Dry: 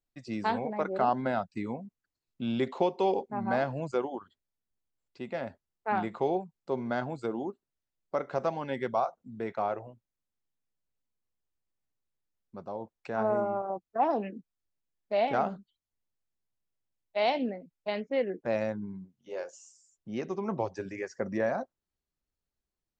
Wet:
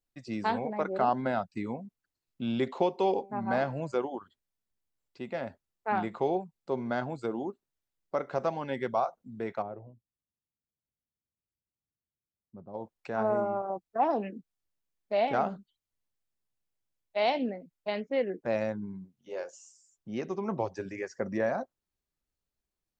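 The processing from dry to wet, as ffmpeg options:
ffmpeg -i in.wav -filter_complex "[0:a]asettb=1/sr,asplit=3[link_01][link_02][link_03];[link_01]atrim=end=3.174[link_04];[link_02]atrim=start=3.17:end=3.98,asetpts=PTS-STARTPTS,afade=type=in:duration=0.004:curve=qsin,afade=type=out:start_time=0.806:duration=0.004:curve=qsin,bandreject=frequency=195.4:width_type=h:width=4,bandreject=frequency=390.8:width_type=h:width=4,bandreject=frequency=586.2:width_type=h:width=4,bandreject=frequency=781.6:width_type=h:width=4,bandreject=frequency=977:width_type=h:width=4,bandreject=frequency=1172.4:width_type=h:width=4,bandreject=frequency=1367.8:width_type=h:width=4,bandreject=frequency=1563.2:width_type=h:width=4,bandreject=frequency=1758.6:width_type=h:width=4,bandreject=frequency=1954:width_type=h:width=4,bandreject=frequency=2149.4:width_type=h:width=4,bandreject=frequency=2344.8:width_type=h:width=4,bandreject=frequency=2540.2:width_type=h:width=4[link_05];[link_03]atrim=start=3.976[link_06];[link_04][link_05]acrossfade=duration=0.004:curve1=hsin:curve2=qsin[link_07];[link_07][link_06]acrossfade=duration=0.004:curve1=qsin:curve2=hsin,asplit=3[link_08][link_09][link_10];[link_08]afade=type=out:start_time=9.61:duration=0.02[link_11];[link_09]bandpass=frequency=110:width_type=q:width=0.5,afade=type=in:start_time=9.61:duration=0.02,afade=type=out:start_time=12.73:duration=0.02[link_12];[link_10]afade=type=in:start_time=12.73:duration=0.02[link_13];[link_11][link_12][link_13]amix=inputs=3:normalize=0" out.wav

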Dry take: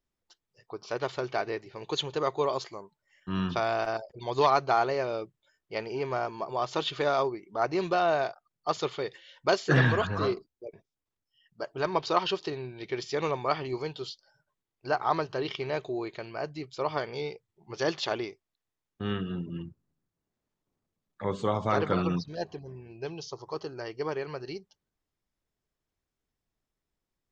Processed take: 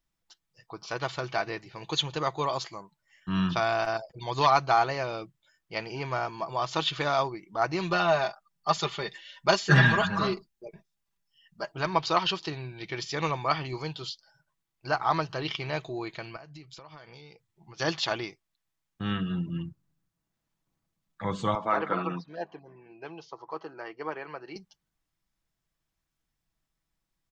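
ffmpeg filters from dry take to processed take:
ffmpeg -i in.wav -filter_complex "[0:a]asettb=1/sr,asplit=3[link_01][link_02][link_03];[link_01]atrim=end=7.894[link_04];[link_02]atrim=start=7.89:end=11.72,asetpts=PTS-STARTPTS,afade=type=in:duration=0.004:curve=qsin,afade=type=out:start_time=3.826:duration=0.004:curve=qsin,aecho=1:1:5:0.65,atrim=end_sample=168903[link_05];[link_03]atrim=start=11.716[link_06];[link_04][link_05]acrossfade=duration=0.004:curve1=hsin:curve2=qsin[link_07];[link_07][link_06]acrossfade=duration=0.004:curve1=qsin:curve2=hsin,asettb=1/sr,asplit=3[link_08][link_09][link_10];[link_08]atrim=end=16.364[link_11];[link_09]atrim=start=16.36:end=17.8,asetpts=PTS-STARTPTS,afade=type=in:duration=0.004:curve=qsin,afade=type=out:start_time=1.436:duration=0.004:curve=qsin,acompressor=threshold=-46dB:ratio=6:attack=3.2:release=140:knee=1:detection=peak[link_12];[link_10]atrim=start=17.796[link_13];[link_11][link_12]acrossfade=duration=0.004:curve1=hsin:curve2=qsin[link_14];[link_14][link_13]acrossfade=duration=0.004:curve1=qsin:curve2=hsin,asettb=1/sr,asplit=3[link_15][link_16][link_17];[link_15]atrim=end=21.554[link_18];[link_16]atrim=start=21.55:end=24.56,asetpts=PTS-STARTPTS,afade=type=in:duration=0.004:curve=qsin,afade=type=out:start_time=3.006:duration=0.004:curve=qsin,acrossover=split=240 2500:gain=0.0631 1 0.112[link_19][link_20][link_21];[link_19][link_20][link_21]amix=inputs=3:normalize=0[link_22];[link_17]atrim=start=24.556[link_23];[link_18][link_22]acrossfade=duration=0.004:curve1=hsin:curve2=qsin[link_24];[link_24][link_23]acrossfade=duration=0.004:curve1=qsin:curve2=hsin,equalizer=frequency=430:width_type=o:width=1.1:gain=-9,aecho=1:1:6.1:0.35,volume=3.5dB" out.wav

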